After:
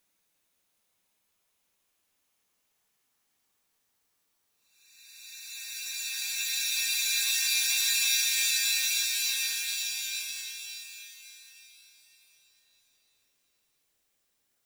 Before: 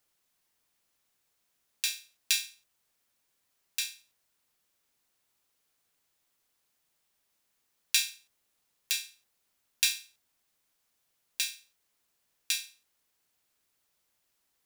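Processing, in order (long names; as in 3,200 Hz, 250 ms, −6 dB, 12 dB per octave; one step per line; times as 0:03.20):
time-frequency cells dropped at random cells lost 25%
extreme stretch with random phases 13×, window 0.50 s, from 0:07.35
level +2.5 dB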